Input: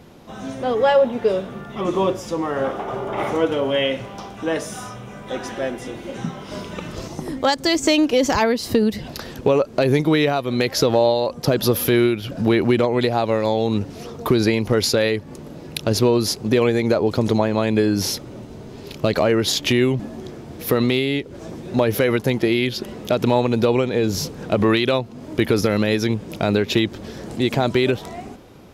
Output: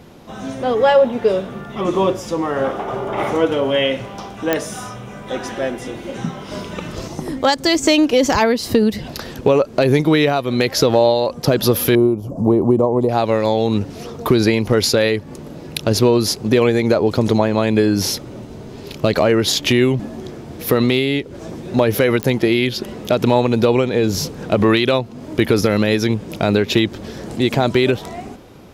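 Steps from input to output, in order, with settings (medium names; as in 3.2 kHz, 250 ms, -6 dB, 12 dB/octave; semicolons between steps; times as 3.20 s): 11.95–13.09 s: FFT filter 1.1 kHz 0 dB, 1.5 kHz -27 dB, 4 kHz -26 dB, 6.5 kHz -8 dB; clicks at 4.53/22.23 s, -6 dBFS; trim +3 dB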